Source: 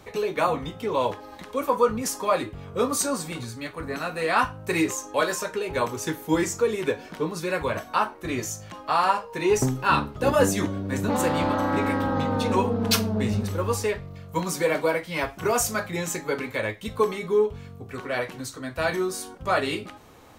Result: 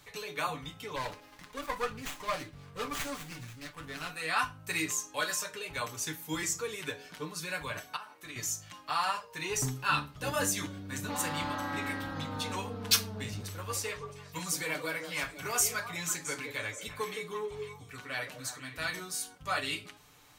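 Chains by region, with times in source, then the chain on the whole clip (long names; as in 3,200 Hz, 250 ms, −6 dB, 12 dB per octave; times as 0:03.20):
0:00.96–0:04.11: high-pass filter 43 Hz + windowed peak hold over 9 samples
0:07.96–0:08.36: high-pass filter 220 Hz 6 dB per octave + downward compressor, threshold −32 dBFS
0:13.23–0:19.00: echo through a band-pass that steps 167 ms, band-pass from 390 Hz, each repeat 1.4 octaves, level −3.5 dB + saturating transformer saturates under 330 Hz
whole clip: guitar amp tone stack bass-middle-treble 5-5-5; comb filter 6.8 ms, depth 50%; hum removal 83.54 Hz, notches 7; level +4 dB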